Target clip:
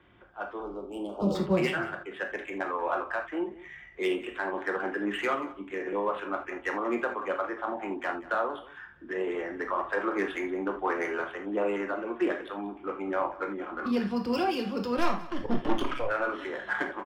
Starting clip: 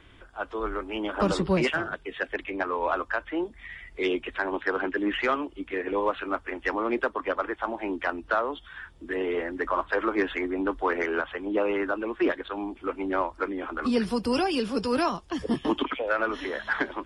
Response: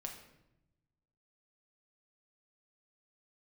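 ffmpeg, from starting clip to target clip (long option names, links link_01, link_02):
-filter_complex "[0:a]highpass=80,acrossover=split=120|1600[link_01][link_02][link_03];[link_03]adynamicsmooth=sensitivity=7:basefreq=2800[link_04];[link_01][link_02][link_04]amix=inputs=3:normalize=0,asettb=1/sr,asplit=3[link_05][link_06][link_07];[link_05]atrim=end=0.604[link_08];[link_06]atrim=start=0.6:end=1.35,asetpts=PTS-STARTPTS,afade=type=in:duration=0.004:curve=qsin,afade=type=out:start_time=0.746:duration=0.004:curve=qsin,asuperstop=centerf=1800:order=4:qfactor=0.57[link_09];[link_07]atrim=start=1.346[link_10];[link_08][link_09]acrossfade=duration=0.004:curve1=hsin:curve2=qsin[link_11];[link_11][link_10]acrossfade=duration=0.004:curve1=qsin:curve2=hsin,asettb=1/sr,asplit=3[link_12][link_13][link_14];[link_12]atrim=end=14.974[link_15];[link_13]atrim=start=14.97:end=16.08,asetpts=PTS-STARTPTS,afade=type=in:duration=0.004:curve=qsin,afade=type=out:start_time=1.106:duration=0.004:curve=qsin,aeval=exprs='0.224*(cos(1*acos(clip(val(0)/0.224,-1,1)))-cos(1*PI/2))+0.0316*(cos(6*acos(clip(val(0)/0.224,-1,1)))-cos(6*PI/2))':channel_layout=same[link_16];[link_14]atrim=start=16.076[link_17];[link_15][link_16]acrossfade=duration=0.004:curve1=hsin:curve2=qsin[link_18];[link_18][link_17]acrossfade=duration=0.004:curve1=qsin:curve2=hsin,aecho=1:1:185:0.119[link_19];[1:a]atrim=start_sample=2205,atrim=end_sample=3969[link_20];[link_19][link_20]afir=irnorm=-1:irlink=0"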